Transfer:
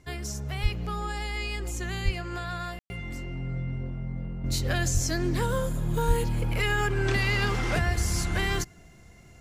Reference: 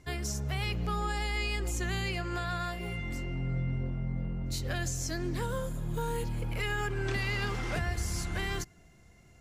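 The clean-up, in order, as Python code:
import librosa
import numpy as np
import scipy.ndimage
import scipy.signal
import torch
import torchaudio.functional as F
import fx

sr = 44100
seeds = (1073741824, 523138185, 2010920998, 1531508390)

y = fx.fix_deplosive(x, sr, at_s=(0.62, 2.04, 4.93, 6.07))
y = fx.fix_ambience(y, sr, seeds[0], print_start_s=8.73, print_end_s=9.23, start_s=2.79, end_s=2.9)
y = fx.gain(y, sr, db=fx.steps((0.0, 0.0), (4.44, -6.5)))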